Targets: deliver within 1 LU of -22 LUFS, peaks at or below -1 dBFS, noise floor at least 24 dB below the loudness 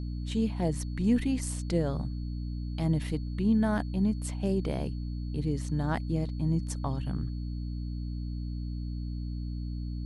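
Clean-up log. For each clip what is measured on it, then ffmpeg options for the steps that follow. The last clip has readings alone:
hum 60 Hz; harmonics up to 300 Hz; hum level -32 dBFS; steady tone 4400 Hz; tone level -58 dBFS; loudness -31.5 LUFS; peak -15.0 dBFS; loudness target -22.0 LUFS
-> -af "bandreject=f=60:t=h:w=6,bandreject=f=120:t=h:w=6,bandreject=f=180:t=h:w=6,bandreject=f=240:t=h:w=6,bandreject=f=300:t=h:w=6"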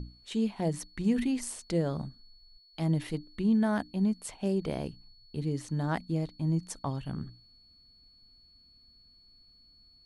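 hum none; steady tone 4400 Hz; tone level -58 dBFS
-> -af "bandreject=f=4.4k:w=30"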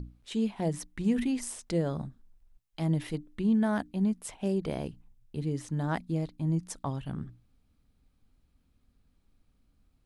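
steady tone none; loudness -32.0 LUFS; peak -17.5 dBFS; loudness target -22.0 LUFS
-> -af "volume=10dB"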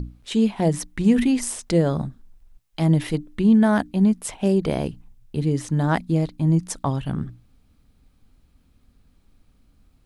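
loudness -22.0 LUFS; peak -7.5 dBFS; noise floor -60 dBFS

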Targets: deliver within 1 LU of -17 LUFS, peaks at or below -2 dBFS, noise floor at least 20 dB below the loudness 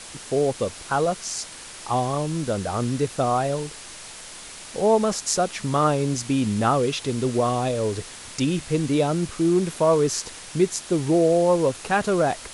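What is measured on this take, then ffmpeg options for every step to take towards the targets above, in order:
noise floor -40 dBFS; noise floor target -43 dBFS; loudness -23.0 LUFS; peak -6.5 dBFS; loudness target -17.0 LUFS
-> -af "afftdn=nr=6:nf=-40"
-af "volume=6dB,alimiter=limit=-2dB:level=0:latency=1"

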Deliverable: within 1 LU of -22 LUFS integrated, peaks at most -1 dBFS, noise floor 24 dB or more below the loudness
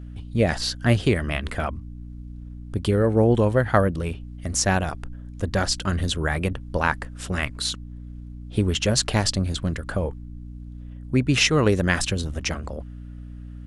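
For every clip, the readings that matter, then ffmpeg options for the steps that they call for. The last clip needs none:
hum 60 Hz; harmonics up to 300 Hz; hum level -36 dBFS; loudness -23.5 LUFS; peak -3.0 dBFS; loudness target -22.0 LUFS
-> -af "bandreject=f=60:t=h:w=4,bandreject=f=120:t=h:w=4,bandreject=f=180:t=h:w=4,bandreject=f=240:t=h:w=4,bandreject=f=300:t=h:w=4"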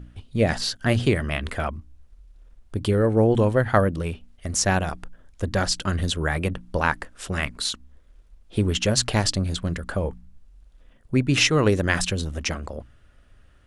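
hum none; loudness -23.5 LUFS; peak -3.0 dBFS; loudness target -22.0 LUFS
-> -af "volume=1.5dB"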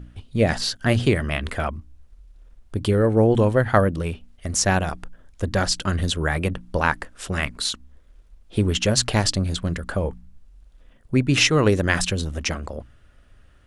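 loudness -22.0 LUFS; peak -1.5 dBFS; noise floor -53 dBFS

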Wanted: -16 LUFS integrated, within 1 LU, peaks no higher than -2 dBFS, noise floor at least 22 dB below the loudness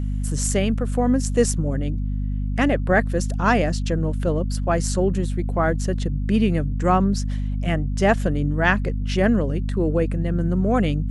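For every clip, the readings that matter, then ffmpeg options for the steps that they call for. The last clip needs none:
hum 50 Hz; harmonics up to 250 Hz; hum level -21 dBFS; loudness -22.0 LUFS; peak -3.5 dBFS; loudness target -16.0 LUFS
-> -af "bandreject=f=50:t=h:w=6,bandreject=f=100:t=h:w=6,bandreject=f=150:t=h:w=6,bandreject=f=200:t=h:w=6,bandreject=f=250:t=h:w=6"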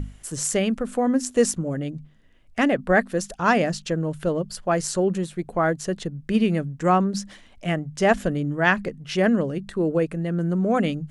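hum none; loudness -23.5 LUFS; peak -4.5 dBFS; loudness target -16.0 LUFS
-> -af "volume=7.5dB,alimiter=limit=-2dB:level=0:latency=1"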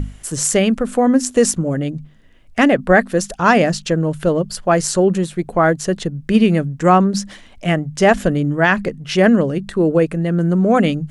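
loudness -16.5 LUFS; peak -2.0 dBFS; noise floor -44 dBFS

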